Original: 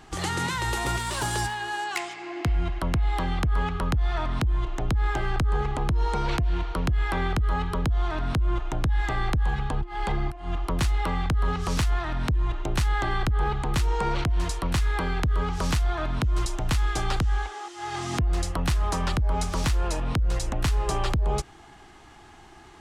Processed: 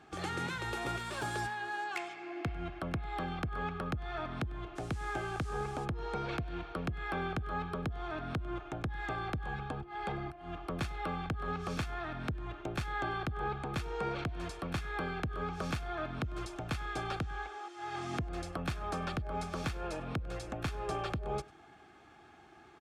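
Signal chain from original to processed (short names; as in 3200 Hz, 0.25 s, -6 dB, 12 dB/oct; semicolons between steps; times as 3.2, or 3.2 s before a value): HPF 54 Hz; tone controls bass -2 dB, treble -9 dB; notch comb 980 Hz; echo 99 ms -23 dB; 4.75–5.84 band noise 740–9100 Hz -53 dBFS; gain -6 dB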